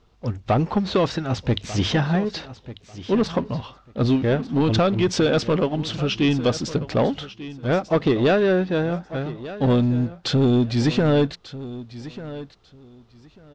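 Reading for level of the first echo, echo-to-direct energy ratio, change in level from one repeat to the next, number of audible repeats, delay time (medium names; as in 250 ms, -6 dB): -15.5 dB, -15.5 dB, -14.5 dB, 2, 1193 ms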